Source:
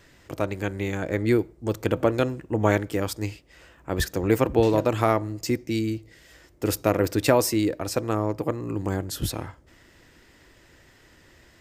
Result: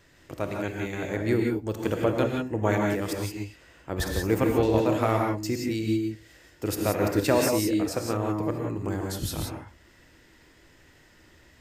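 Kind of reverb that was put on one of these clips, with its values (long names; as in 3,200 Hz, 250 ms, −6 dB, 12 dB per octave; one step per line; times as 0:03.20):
reverb whose tail is shaped and stops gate 200 ms rising, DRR 0.5 dB
level −4.5 dB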